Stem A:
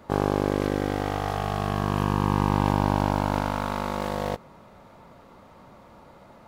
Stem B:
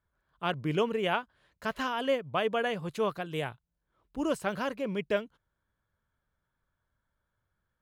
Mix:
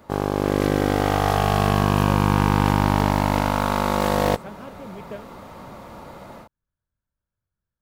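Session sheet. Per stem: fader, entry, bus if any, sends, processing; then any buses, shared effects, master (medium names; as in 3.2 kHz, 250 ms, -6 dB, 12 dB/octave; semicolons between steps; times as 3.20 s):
-0.5 dB, 0.00 s, no send, treble shelf 9.4 kHz +6.5 dB; level rider gain up to 10.5 dB
-13.0 dB, 0.00 s, no send, bass shelf 480 Hz +10 dB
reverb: none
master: overload inside the chain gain 9.5 dB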